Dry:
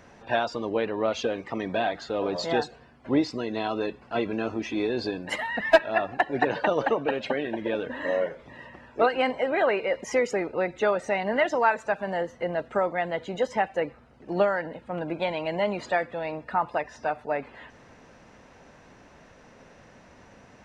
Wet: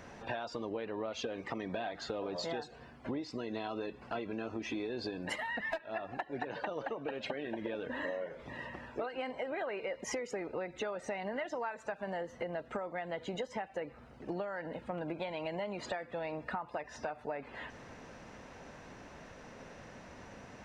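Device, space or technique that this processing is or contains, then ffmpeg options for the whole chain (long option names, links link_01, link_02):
serial compression, peaks first: -af "acompressor=threshold=-33dB:ratio=5,acompressor=threshold=-38dB:ratio=2,volume=1dB"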